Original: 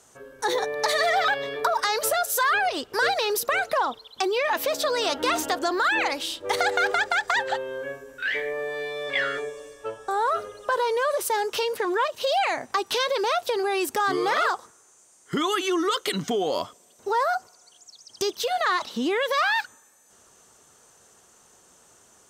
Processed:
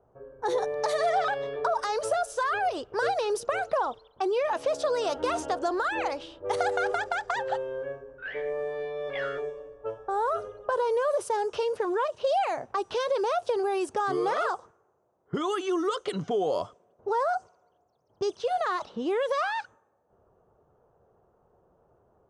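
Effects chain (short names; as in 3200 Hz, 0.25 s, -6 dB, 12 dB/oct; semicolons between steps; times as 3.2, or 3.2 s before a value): downsampling 22050 Hz; ten-band EQ 250 Hz -10 dB, 1000 Hz -4 dB, 2000 Hz -12 dB, 4000 Hz -11 dB, 8000 Hz -10 dB; low-pass opened by the level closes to 870 Hz, open at -27 dBFS; gain +3 dB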